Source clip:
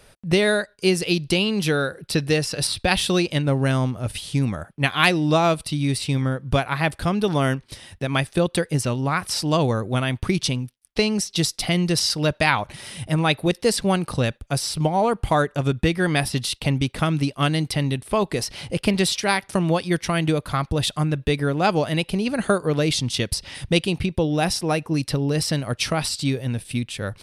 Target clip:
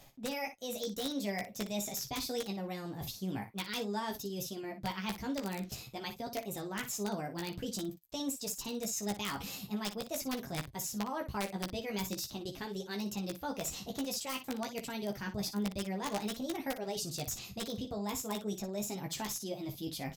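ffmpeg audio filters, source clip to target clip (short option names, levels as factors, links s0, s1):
-filter_complex "[0:a]equalizer=f=1100:w=1.2:g=-4.5,areverse,acompressor=threshold=0.0224:ratio=6,areverse,flanger=delay=9.4:depth=5.6:regen=-28:speed=0.35:shape=triangular,aeval=exprs='(mod(22.4*val(0)+1,2)-1)/22.4':c=same,asplit=2[s0][s1];[s1]aecho=0:1:20|79:0.531|0.282[s2];[s0][s2]amix=inputs=2:normalize=0,asetrate=59535,aresample=44100"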